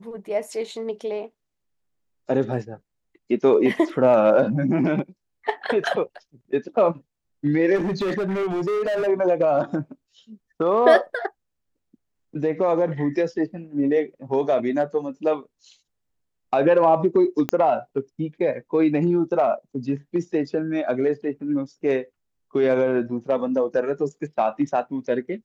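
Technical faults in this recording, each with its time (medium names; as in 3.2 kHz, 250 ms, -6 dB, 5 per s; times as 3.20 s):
7.75–9.08 s: clipped -21 dBFS
17.49 s: pop -9 dBFS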